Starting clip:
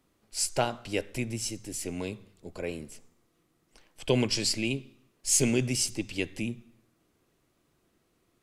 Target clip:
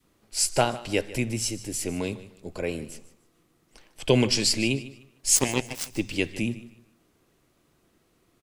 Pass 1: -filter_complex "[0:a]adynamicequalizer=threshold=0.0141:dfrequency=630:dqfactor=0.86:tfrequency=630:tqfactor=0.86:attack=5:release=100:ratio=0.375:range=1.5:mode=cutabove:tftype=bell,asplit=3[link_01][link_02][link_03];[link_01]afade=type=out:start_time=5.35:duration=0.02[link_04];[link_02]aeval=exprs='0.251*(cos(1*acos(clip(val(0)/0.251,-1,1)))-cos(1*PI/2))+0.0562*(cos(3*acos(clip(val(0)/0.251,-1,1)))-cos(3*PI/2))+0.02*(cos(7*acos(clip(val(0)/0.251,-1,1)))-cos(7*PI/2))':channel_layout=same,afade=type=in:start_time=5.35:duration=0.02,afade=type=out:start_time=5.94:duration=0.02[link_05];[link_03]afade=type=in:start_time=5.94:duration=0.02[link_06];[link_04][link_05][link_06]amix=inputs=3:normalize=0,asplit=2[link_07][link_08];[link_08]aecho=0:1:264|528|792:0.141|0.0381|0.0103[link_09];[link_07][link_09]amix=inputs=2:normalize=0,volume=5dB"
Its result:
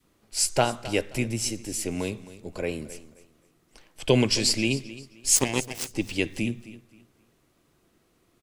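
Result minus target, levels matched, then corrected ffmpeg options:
echo 113 ms late
-filter_complex "[0:a]adynamicequalizer=threshold=0.0141:dfrequency=630:dqfactor=0.86:tfrequency=630:tqfactor=0.86:attack=5:release=100:ratio=0.375:range=1.5:mode=cutabove:tftype=bell,asplit=3[link_01][link_02][link_03];[link_01]afade=type=out:start_time=5.35:duration=0.02[link_04];[link_02]aeval=exprs='0.251*(cos(1*acos(clip(val(0)/0.251,-1,1)))-cos(1*PI/2))+0.0562*(cos(3*acos(clip(val(0)/0.251,-1,1)))-cos(3*PI/2))+0.02*(cos(7*acos(clip(val(0)/0.251,-1,1)))-cos(7*PI/2))':channel_layout=same,afade=type=in:start_time=5.35:duration=0.02,afade=type=out:start_time=5.94:duration=0.02[link_05];[link_03]afade=type=in:start_time=5.94:duration=0.02[link_06];[link_04][link_05][link_06]amix=inputs=3:normalize=0,asplit=2[link_07][link_08];[link_08]aecho=0:1:151|302|453:0.141|0.0381|0.0103[link_09];[link_07][link_09]amix=inputs=2:normalize=0,volume=5dB"

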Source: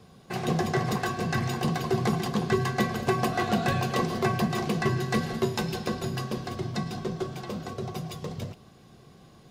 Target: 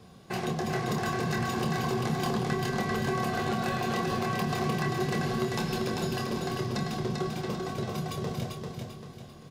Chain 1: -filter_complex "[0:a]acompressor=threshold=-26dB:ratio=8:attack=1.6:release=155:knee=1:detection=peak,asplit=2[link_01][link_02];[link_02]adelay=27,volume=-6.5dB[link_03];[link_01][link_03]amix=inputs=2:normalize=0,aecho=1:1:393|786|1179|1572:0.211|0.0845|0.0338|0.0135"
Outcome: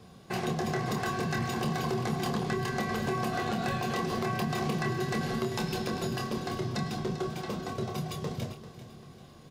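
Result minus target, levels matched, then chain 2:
echo-to-direct −9.5 dB
-filter_complex "[0:a]acompressor=threshold=-26dB:ratio=8:attack=1.6:release=155:knee=1:detection=peak,asplit=2[link_01][link_02];[link_02]adelay=27,volume=-6.5dB[link_03];[link_01][link_03]amix=inputs=2:normalize=0,aecho=1:1:393|786|1179|1572|1965:0.631|0.252|0.101|0.0404|0.0162"

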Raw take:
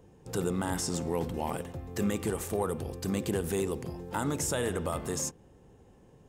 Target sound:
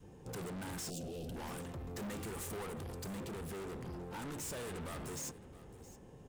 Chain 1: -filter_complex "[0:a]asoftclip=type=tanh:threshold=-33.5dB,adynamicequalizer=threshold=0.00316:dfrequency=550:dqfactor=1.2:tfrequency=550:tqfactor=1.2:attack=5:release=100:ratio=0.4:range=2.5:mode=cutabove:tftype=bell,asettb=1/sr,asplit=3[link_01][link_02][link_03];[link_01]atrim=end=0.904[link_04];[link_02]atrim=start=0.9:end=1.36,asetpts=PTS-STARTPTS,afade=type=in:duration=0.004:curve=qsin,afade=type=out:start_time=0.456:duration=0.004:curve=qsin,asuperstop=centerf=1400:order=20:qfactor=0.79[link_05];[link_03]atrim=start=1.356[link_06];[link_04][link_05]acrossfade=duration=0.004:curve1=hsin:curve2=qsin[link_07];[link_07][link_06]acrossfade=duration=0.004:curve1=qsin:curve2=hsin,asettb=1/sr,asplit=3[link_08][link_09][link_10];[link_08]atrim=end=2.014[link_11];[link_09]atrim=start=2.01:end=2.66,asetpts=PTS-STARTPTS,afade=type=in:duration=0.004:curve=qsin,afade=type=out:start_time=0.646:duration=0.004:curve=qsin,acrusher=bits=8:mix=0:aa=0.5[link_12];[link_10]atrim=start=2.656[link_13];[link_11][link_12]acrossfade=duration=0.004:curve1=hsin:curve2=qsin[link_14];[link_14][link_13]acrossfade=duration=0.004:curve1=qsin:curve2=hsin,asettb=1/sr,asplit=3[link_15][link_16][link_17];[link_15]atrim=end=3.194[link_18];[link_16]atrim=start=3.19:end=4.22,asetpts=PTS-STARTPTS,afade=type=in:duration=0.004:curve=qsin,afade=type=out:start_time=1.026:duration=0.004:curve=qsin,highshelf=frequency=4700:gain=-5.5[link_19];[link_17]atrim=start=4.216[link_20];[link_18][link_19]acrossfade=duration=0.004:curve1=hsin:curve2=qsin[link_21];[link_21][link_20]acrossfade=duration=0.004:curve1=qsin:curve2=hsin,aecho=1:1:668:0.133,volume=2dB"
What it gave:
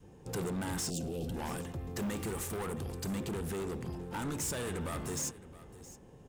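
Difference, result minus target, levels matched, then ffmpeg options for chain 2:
soft clipping: distortion −5 dB
-filter_complex "[0:a]asoftclip=type=tanh:threshold=-43dB,adynamicequalizer=threshold=0.00316:dfrequency=550:dqfactor=1.2:tfrequency=550:tqfactor=1.2:attack=5:release=100:ratio=0.4:range=2.5:mode=cutabove:tftype=bell,asettb=1/sr,asplit=3[link_01][link_02][link_03];[link_01]atrim=end=0.904[link_04];[link_02]atrim=start=0.9:end=1.36,asetpts=PTS-STARTPTS,afade=type=in:duration=0.004:curve=qsin,afade=type=out:start_time=0.456:duration=0.004:curve=qsin,asuperstop=centerf=1400:order=20:qfactor=0.79[link_05];[link_03]atrim=start=1.356[link_06];[link_04][link_05]acrossfade=duration=0.004:curve1=hsin:curve2=qsin[link_07];[link_07][link_06]acrossfade=duration=0.004:curve1=qsin:curve2=hsin,asettb=1/sr,asplit=3[link_08][link_09][link_10];[link_08]atrim=end=2.014[link_11];[link_09]atrim=start=2.01:end=2.66,asetpts=PTS-STARTPTS,afade=type=in:duration=0.004:curve=qsin,afade=type=out:start_time=0.646:duration=0.004:curve=qsin,acrusher=bits=8:mix=0:aa=0.5[link_12];[link_10]atrim=start=2.656[link_13];[link_11][link_12]acrossfade=duration=0.004:curve1=hsin:curve2=qsin[link_14];[link_14][link_13]acrossfade=duration=0.004:curve1=qsin:curve2=hsin,asettb=1/sr,asplit=3[link_15][link_16][link_17];[link_15]atrim=end=3.194[link_18];[link_16]atrim=start=3.19:end=4.22,asetpts=PTS-STARTPTS,afade=type=in:duration=0.004:curve=qsin,afade=type=out:start_time=1.026:duration=0.004:curve=qsin,highshelf=frequency=4700:gain=-5.5[link_19];[link_17]atrim=start=4.216[link_20];[link_18][link_19]acrossfade=duration=0.004:curve1=hsin:curve2=qsin[link_21];[link_21][link_20]acrossfade=duration=0.004:curve1=qsin:curve2=hsin,aecho=1:1:668:0.133,volume=2dB"

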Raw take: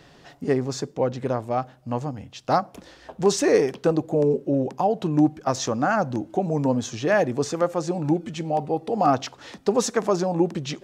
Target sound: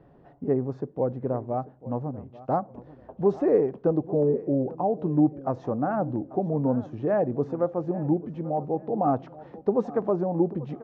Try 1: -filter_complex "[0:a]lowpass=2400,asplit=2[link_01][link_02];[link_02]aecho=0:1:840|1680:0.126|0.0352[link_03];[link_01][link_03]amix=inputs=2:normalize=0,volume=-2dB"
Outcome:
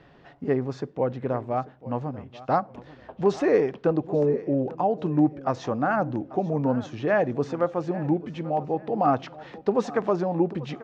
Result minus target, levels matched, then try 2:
2,000 Hz band +11.0 dB
-filter_complex "[0:a]lowpass=790,asplit=2[link_01][link_02];[link_02]aecho=0:1:840|1680:0.126|0.0352[link_03];[link_01][link_03]amix=inputs=2:normalize=0,volume=-2dB"

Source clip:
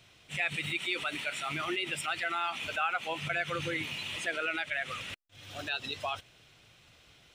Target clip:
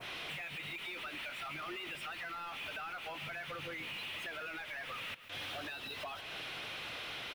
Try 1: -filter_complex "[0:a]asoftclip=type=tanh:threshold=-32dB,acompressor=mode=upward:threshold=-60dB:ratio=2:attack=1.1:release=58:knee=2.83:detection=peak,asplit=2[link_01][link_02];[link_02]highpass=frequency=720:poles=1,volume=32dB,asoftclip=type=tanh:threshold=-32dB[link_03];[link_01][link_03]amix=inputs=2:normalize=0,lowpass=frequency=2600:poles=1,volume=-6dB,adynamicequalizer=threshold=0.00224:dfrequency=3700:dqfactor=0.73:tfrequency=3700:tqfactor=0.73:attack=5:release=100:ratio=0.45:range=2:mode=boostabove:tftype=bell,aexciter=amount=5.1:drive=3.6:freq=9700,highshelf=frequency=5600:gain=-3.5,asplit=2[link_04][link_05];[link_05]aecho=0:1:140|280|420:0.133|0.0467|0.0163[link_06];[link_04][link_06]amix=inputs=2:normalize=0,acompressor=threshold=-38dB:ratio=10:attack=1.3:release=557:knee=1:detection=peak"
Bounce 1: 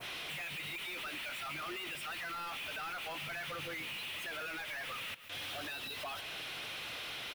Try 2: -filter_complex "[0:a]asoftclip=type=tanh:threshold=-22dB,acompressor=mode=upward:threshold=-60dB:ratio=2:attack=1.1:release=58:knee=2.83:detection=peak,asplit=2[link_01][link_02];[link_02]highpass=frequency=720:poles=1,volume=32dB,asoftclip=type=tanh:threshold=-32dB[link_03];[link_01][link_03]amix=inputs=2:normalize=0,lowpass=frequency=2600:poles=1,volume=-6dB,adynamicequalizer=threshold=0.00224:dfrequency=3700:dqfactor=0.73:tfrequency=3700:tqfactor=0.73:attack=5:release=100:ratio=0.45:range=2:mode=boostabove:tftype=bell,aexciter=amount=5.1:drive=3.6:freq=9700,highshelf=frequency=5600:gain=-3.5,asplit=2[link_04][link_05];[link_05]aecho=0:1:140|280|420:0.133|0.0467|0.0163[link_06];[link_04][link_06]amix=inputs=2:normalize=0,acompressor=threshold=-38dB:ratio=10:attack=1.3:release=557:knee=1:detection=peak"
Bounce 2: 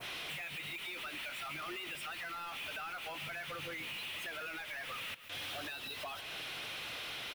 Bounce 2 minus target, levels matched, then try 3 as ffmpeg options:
8,000 Hz band +4.5 dB
-filter_complex "[0:a]asoftclip=type=tanh:threshold=-22dB,acompressor=mode=upward:threshold=-60dB:ratio=2:attack=1.1:release=58:knee=2.83:detection=peak,asplit=2[link_01][link_02];[link_02]highpass=frequency=720:poles=1,volume=32dB,asoftclip=type=tanh:threshold=-32dB[link_03];[link_01][link_03]amix=inputs=2:normalize=0,lowpass=frequency=2600:poles=1,volume=-6dB,adynamicequalizer=threshold=0.00224:dfrequency=3700:dqfactor=0.73:tfrequency=3700:tqfactor=0.73:attack=5:release=100:ratio=0.45:range=2:mode=boostabove:tftype=bell,aexciter=amount=5.1:drive=3.6:freq=9700,highshelf=frequency=5600:gain=-13,asplit=2[link_04][link_05];[link_05]aecho=0:1:140|280|420:0.133|0.0467|0.0163[link_06];[link_04][link_06]amix=inputs=2:normalize=0,acompressor=threshold=-38dB:ratio=10:attack=1.3:release=557:knee=1:detection=peak"

